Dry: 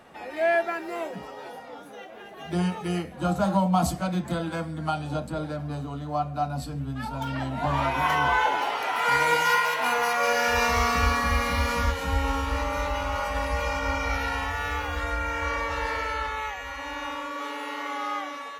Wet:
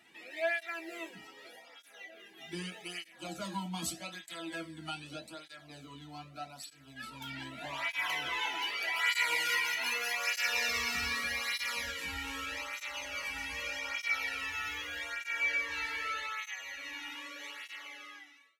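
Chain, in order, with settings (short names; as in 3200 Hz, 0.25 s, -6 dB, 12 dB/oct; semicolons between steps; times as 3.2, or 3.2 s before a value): ending faded out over 1.27 s; resonant high shelf 1500 Hz +11 dB, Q 1.5; notch 1500 Hz, Q 21; resonator 330 Hz, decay 0.2 s, harmonics all, mix 80%; tape flanging out of phase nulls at 0.82 Hz, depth 1.9 ms; gain -2 dB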